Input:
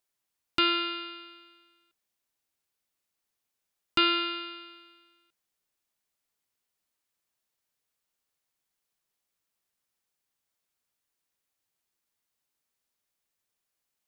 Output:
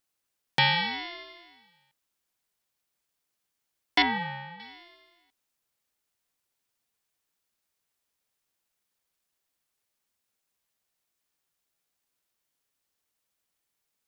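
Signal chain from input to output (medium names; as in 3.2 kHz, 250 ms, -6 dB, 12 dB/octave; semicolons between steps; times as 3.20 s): 4.02–4.60 s: low-pass 1.4 kHz 12 dB/octave; ring modulator with a swept carrier 600 Hz, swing 20%, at 0.8 Hz; trim +5 dB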